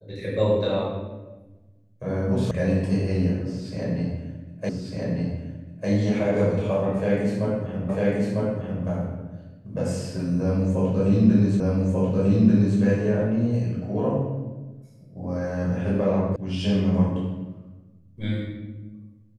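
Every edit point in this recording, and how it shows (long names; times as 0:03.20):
0:02.51: cut off before it has died away
0:04.69: the same again, the last 1.2 s
0:07.89: the same again, the last 0.95 s
0:11.60: the same again, the last 1.19 s
0:16.36: cut off before it has died away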